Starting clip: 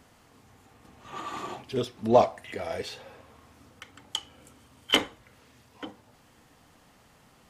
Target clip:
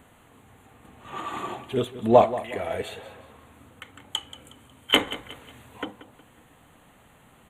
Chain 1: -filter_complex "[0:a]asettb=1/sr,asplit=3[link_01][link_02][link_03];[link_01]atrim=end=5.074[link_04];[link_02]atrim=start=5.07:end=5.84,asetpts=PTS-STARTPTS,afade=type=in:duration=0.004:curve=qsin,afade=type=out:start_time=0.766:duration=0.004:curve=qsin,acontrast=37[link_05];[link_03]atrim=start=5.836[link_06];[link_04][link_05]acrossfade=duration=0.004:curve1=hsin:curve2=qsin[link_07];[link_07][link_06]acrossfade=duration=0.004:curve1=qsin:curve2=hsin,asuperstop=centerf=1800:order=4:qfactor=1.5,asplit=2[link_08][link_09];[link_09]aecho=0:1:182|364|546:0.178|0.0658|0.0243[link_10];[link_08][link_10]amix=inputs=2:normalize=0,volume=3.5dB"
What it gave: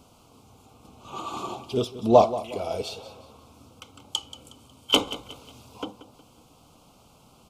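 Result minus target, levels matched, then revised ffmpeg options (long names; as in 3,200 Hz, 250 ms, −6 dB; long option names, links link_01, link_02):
2,000 Hz band −8.0 dB
-filter_complex "[0:a]asettb=1/sr,asplit=3[link_01][link_02][link_03];[link_01]atrim=end=5.074[link_04];[link_02]atrim=start=5.07:end=5.84,asetpts=PTS-STARTPTS,afade=type=in:duration=0.004:curve=qsin,afade=type=out:start_time=0.766:duration=0.004:curve=qsin,acontrast=37[link_05];[link_03]atrim=start=5.836[link_06];[link_04][link_05]acrossfade=duration=0.004:curve1=hsin:curve2=qsin[link_07];[link_07][link_06]acrossfade=duration=0.004:curve1=qsin:curve2=hsin,asuperstop=centerf=5200:order=4:qfactor=1.5,asplit=2[link_08][link_09];[link_09]aecho=0:1:182|364|546:0.178|0.0658|0.0243[link_10];[link_08][link_10]amix=inputs=2:normalize=0,volume=3.5dB"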